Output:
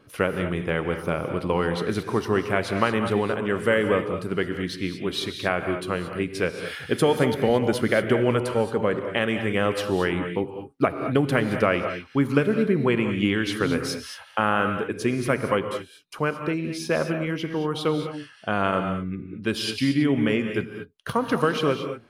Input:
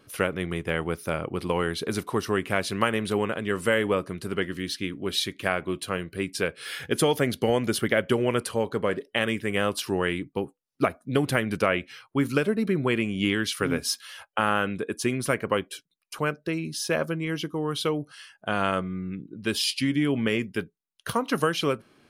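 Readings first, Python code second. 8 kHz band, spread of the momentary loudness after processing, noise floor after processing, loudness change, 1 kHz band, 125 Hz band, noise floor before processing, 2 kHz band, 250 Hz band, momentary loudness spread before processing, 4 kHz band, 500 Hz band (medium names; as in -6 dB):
-5.5 dB, 7 LU, -49 dBFS, +2.5 dB, +2.5 dB, +3.5 dB, -73 dBFS, +1.5 dB, +3.0 dB, 7 LU, -1.5 dB, +3.0 dB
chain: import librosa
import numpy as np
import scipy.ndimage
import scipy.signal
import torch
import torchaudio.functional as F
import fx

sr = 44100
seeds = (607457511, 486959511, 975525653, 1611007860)

y = fx.high_shelf(x, sr, hz=3800.0, db=-10.5)
y = fx.rev_gated(y, sr, seeds[0], gate_ms=250, shape='rising', drr_db=6.5)
y = y * librosa.db_to_amplitude(2.5)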